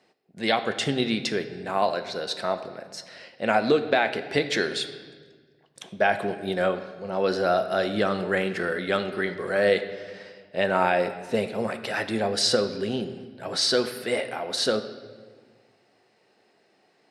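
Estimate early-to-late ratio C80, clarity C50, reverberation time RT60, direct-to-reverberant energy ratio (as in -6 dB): 12.5 dB, 11.0 dB, 1.5 s, 8.5 dB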